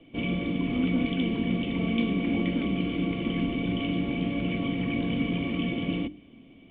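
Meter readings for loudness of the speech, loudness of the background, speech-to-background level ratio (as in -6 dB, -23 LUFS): -33.0 LUFS, -29.0 LUFS, -4.0 dB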